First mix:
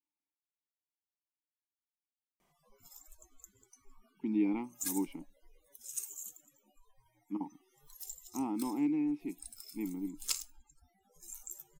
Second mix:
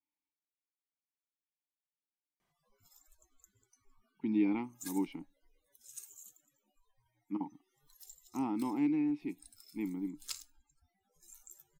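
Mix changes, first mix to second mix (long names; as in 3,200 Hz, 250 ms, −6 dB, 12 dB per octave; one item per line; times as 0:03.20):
background −9.5 dB
master: add graphic EQ with 15 bands 100 Hz +11 dB, 1,600 Hz +7 dB, 4,000 Hz +6 dB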